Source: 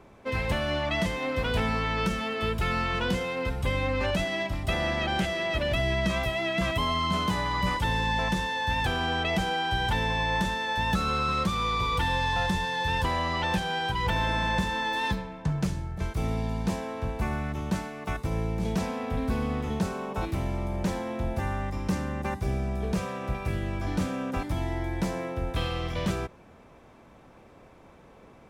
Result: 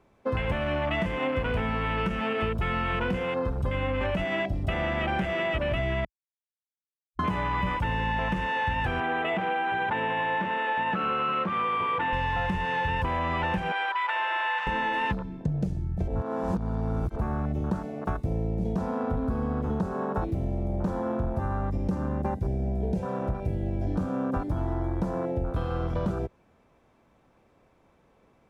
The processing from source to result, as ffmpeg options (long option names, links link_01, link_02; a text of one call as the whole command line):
ffmpeg -i in.wav -filter_complex "[0:a]asettb=1/sr,asplit=3[link_01][link_02][link_03];[link_01]atrim=end=9.004[link_04];[link_02]atrim=start=9:end=12.13,asetpts=PTS-STARTPTS,afade=type=in:duration=0.004:curve=qsin,afade=type=out:start_time=3.126:duration=0.004:curve=qsin,highpass=250,lowpass=2700[link_05];[link_03]atrim=start=12.126[link_06];[link_04][link_05]acrossfade=duration=0.004:curve1=hsin:curve2=qsin[link_07];[link_07][link_06]acrossfade=duration=0.004:curve1=qsin:curve2=hsin,asettb=1/sr,asplit=3[link_08][link_09][link_10];[link_08]atrim=end=13.724[link_11];[link_09]atrim=start=13.72:end=14.67,asetpts=PTS-STARTPTS,afade=type=in:duration=0.004:curve=qsin,afade=type=out:start_time=0.946:duration=0.004:curve=qsin,asuperpass=centerf=2000:order=4:qfactor=0.51[link_12];[link_10]atrim=start=14.666[link_13];[link_11][link_12]acrossfade=duration=0.004:curve1=hsin:curve2=qsin[link_14];[link_14][link_13]acrossfade=duration=0.004:curve1=qsin:curve2=hsin,asettb=1/sr,asplit=3[link_15][link_16][link_17];[link_15]atrim=end=22.084[link_18];[link_16]atrim=start=22.08:end=23.94,asetpts=PTS-STARTPTS,afade=type=in:duration=0.004:curve=qsin,afade=type=out:start_time=1.856:duration=0.004:curve=qsin,asuperstop=centerf=1200:order=4:qfactor=5.6[link_19];[link_17]atrim=start=23.936[link_20];[link_18][link_19]acrossfade=duration=0.004:curve1=hsin:curve2=qsin[link_21];[link_21][link_20]acrossfade=duration=0.004:curve1=qsin:curve2=hsin,asplit=5[link_22][link_23][link_24][link_25][link_26];[link_22]atrim=end=6.05,asetpts=PTS-STARTPTS,afade=type=out:start_time=6.046:duration=0.004:curve=hsin[link_27];[link_23]atrim=start=6.05:end=7.19,asetpts=PTS-STARTPTS,volume=0[link_28];[link_24]atrim=start=7.19:end=16.082,asetpts=PTS-STARTPTS,afade=type=in:duration=0.004:curve=hsin[link_29];[link_25]atrim=start=16.078:end=17.162,asetpts=PTS-STARTPTS,areverse[link_30];[link_26]atrim=start=17.158[link_31];[link_27][link_28][link_29]concat=n=3:v=0:a=1[link_32];[link_32][link_30]acrossfade=duration=0.004:curve1=hsin:curve2=hsin[link_33];[link_33][link_31]acrossfade=duration=0.004:curve1=hsin:curve2=hsin,afwtdn=0.0251,acompressor=threshold=-31dB:ratio=6,volume=6.5dB" out.wav